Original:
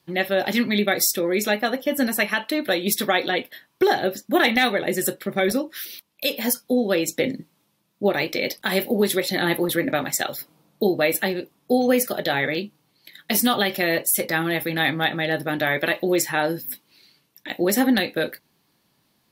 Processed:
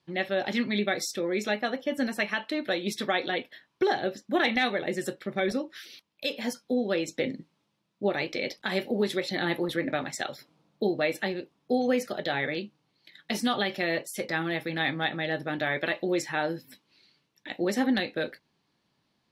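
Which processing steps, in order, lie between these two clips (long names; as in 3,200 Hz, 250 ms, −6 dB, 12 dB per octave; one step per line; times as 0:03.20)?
low-pass filter 5,600 Hz 12 dB per octave
level −6.5 dB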